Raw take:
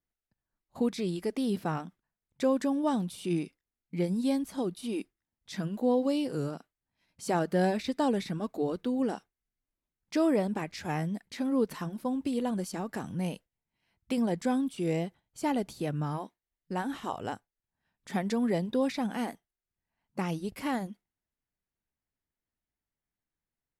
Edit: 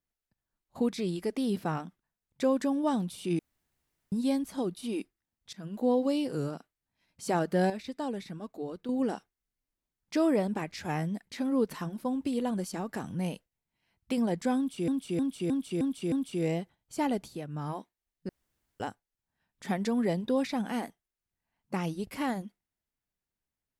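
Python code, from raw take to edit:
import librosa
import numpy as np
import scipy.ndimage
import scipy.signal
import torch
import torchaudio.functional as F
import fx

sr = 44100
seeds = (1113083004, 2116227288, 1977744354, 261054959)

y = fx.edit(x, sr, fx.room_tone_fill(start_s=3.39, length_s=0.73),
    fx.fade_in_from(start_s=5.53, length_s=0.3, floor_db=-23.0),
    fx.clip_gain(start_s=7.7, length_s=1.19, db=-7.0),
    fx.repeat(start_s=14.57, length_s=0.31, count=6),
    fx.fade_down_up(start_s=15.63, length_s=0.57, db=-8.5, fade_s=0.27),
    fx.room_tone_fill(start_s=16.74, length_s=0.51), tone=tone)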